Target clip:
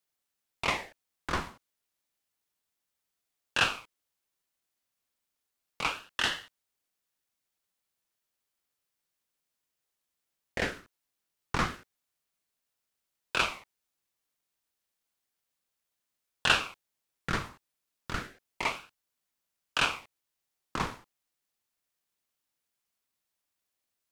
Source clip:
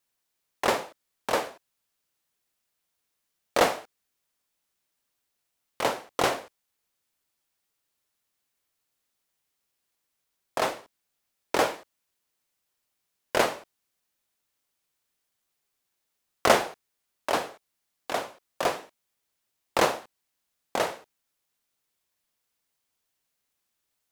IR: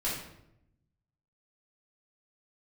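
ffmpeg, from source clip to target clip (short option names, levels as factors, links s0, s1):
-filter_complex "[0:a]acrossover=split=7800[s0][s1];[s1]acompressor=threshold=0.002:ratio=4:attack=1:release=60[s2];[s0][s2]amix=inputs=2:normalize=0,aeval=exprs='val(0)*sin(2*PI*1400*n/s+1400*0.7/0.31*sin(2*PI*0.31*n/s))':c=same,volume=0.794"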